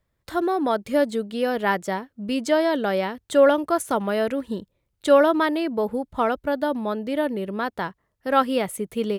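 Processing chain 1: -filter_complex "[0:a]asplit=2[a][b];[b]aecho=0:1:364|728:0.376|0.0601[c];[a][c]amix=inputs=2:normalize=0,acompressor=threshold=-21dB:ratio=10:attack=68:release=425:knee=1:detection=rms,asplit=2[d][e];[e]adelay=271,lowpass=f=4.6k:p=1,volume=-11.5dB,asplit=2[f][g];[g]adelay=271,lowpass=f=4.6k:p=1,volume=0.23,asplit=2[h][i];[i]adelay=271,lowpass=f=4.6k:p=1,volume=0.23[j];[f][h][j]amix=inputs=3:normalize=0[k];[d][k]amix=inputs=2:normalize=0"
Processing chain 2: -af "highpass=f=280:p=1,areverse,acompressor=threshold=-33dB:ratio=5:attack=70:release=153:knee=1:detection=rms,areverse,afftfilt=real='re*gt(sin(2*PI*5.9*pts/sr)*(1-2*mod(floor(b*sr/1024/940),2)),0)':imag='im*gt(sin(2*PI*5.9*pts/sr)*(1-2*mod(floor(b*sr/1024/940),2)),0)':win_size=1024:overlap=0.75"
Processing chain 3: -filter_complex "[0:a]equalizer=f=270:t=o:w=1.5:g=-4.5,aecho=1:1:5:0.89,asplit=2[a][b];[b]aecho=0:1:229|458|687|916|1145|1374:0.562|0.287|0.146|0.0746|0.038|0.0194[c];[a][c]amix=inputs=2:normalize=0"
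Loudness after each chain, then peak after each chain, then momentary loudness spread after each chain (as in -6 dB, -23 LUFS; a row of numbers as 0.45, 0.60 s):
-25.5, -37.0, -20.5 LUFS; -10.5, -20.0, -4.0 dBFS; 4, 6, 10 LU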